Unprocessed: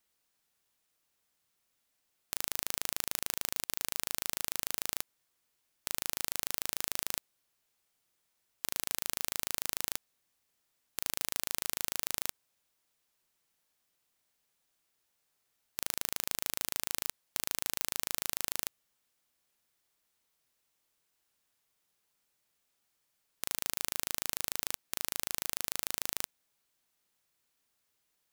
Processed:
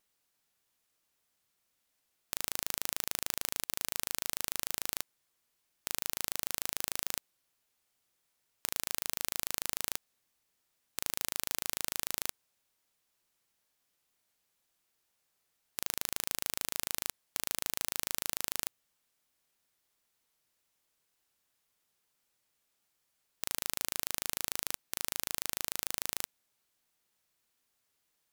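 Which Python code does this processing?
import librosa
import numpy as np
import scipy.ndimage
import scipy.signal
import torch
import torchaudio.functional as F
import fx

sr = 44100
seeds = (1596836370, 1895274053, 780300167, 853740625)

y = fx.wow_flutter(x, sr, seeds[0], rate_hz=2.1, depth_cents=23.0)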